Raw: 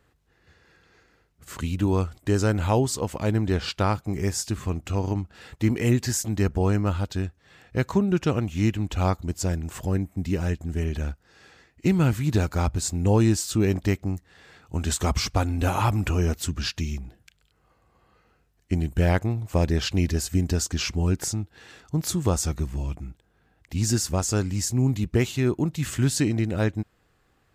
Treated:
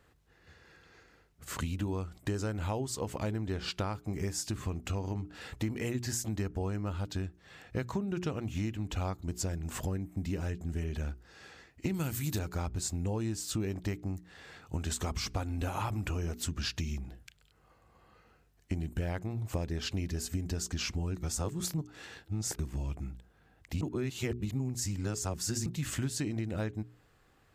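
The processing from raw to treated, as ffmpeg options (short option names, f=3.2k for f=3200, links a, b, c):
-filter_complex "[0:a]asettb=1/sr,asplit=3[a][b][c];[a]atrim=end=11.944[d];[b]atrim=start=11.94:end=12.39,asetpts=PTS-STARTPTS,afade=t=in:d=0.004:c=qsin,afade=t=out:st=0.446:d=0.004:c=qsin,aemphasis=mode=production:type=75fm[e];[c]atrim=start=12.386[f];[d][e]acrossfade=d=0.004:c1=hsin:c2=qsin[g];[g][f]acrossfade=d=0.004:c1=qsin:c2=hsin,asplit=5[h][i][j][k][l];[h]atrim=end=21.162[m];[i]atrim=start=21.158:end=22.592,asetpts=PTS-STARTPTS,areverse[n];[j]atrim=start=22.588:end=23.812[o];[k]atrim=start=23.808:end=25.662,asetpts=PTS-STARTPTS,areverse[p];[l]atrim=start=25.658[q];[m][n]acrossfade=d=0.004:c1=hsin:c2=hsin[r];[r][o]acrossfade=d=0.004:c1=hsin:c2=hsin[s];[s][p]acrossfade=d=0.004:c1=hsin:c2=hsin[t];[t][q]acrossfade=d=0.004:c1=hsin:c2=hsin,bandreject=f=60:t=h:w=6,bandreject=f=120:t=h:w=6,bandreject=f=180:t=h:w=6,bandreject=f=240:t=h:w=6,bandreject=f=300:t=h:w=6,bandreject=f=360:t=h:w=6,bandreject=f=420:t=h:w=6,acompressor=threshold=-31dB:ratio=6"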